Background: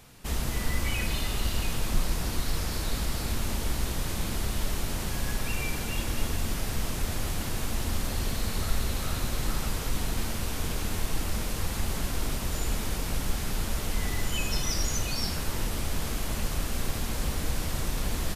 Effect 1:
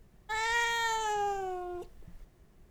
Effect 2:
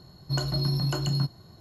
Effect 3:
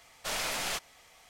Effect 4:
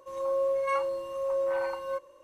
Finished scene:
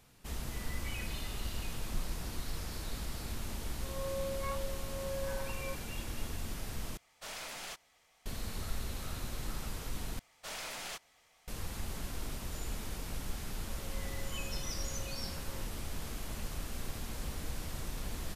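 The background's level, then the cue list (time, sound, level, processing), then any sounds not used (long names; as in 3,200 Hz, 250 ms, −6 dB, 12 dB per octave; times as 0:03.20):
background −10 dB
0:03.76: mix in 4 −11.5 dB
0:06.97: overwrite with 3 −10.5 dB
0:10.19: overwrite with 3 −9 dB
0:13.64: mix in 4 −14 dB + downward compressor 3 to 1, threshold −41 dBFS
not used: 1, 2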